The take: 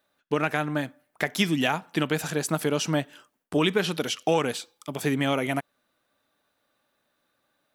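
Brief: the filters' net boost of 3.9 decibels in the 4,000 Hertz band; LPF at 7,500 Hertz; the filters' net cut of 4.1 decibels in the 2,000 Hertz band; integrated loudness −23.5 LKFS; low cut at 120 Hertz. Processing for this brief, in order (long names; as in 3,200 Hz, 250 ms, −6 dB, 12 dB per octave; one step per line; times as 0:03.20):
high-pass filter 120 Hz
low-pass filter 7,500 Hz
parametric band 2,000 Hz −8 dB
parametric band 4,000 Hz +9 dB
level +3.5 dB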